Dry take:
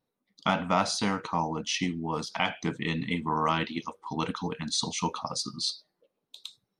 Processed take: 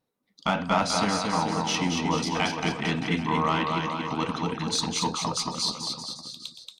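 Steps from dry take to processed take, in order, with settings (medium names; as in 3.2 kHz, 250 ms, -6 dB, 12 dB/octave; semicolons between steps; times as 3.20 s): 1.86–2.29 s: transient shaper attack +10 dB, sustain +6 dB; Chebyshev shaper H 4 -26 dB, 5 -26 dB, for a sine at -10 dBFS; bouncing-ball echo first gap 230 ms, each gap 0.9×, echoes 5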